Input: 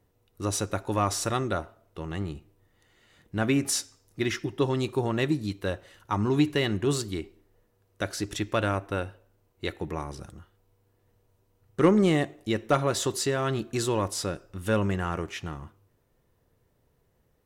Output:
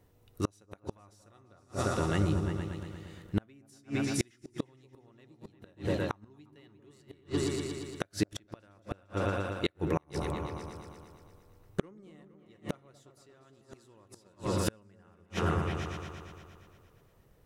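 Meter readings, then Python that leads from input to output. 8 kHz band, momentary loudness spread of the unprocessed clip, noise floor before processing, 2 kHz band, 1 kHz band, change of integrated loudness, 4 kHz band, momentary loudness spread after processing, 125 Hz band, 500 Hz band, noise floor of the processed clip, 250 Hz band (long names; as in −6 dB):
−11.0 dB, 13 LU, −70 dBFS, −7.5 dB, −8.0 dB, −6.5 dB, −9.0 dB, 17 LU, −5.0 dB, −8.0 dB, −64 dBFS, −7.5 dB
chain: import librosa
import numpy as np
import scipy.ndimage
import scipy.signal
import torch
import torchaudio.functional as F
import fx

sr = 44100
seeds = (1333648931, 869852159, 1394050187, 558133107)

y = fx.echo_opening(x, sr, ms=116, hz=200, octaves=2, feedback_pct=70, wet_db=-3)
y = fx.gate_flip(y, sr, shuts_db=-19.0, range_db=-37)
y = y * librosa.db_to_amplitude(3.5)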